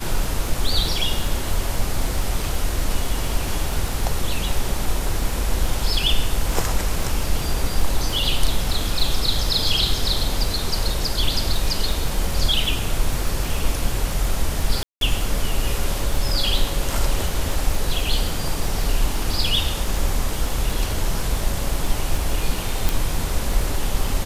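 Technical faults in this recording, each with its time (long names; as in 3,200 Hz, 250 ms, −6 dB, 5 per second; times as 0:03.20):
surface crackle 30 per second −25 dBFS
0:14.83–0:15.01: drop-out 182 ms
0:22.89: click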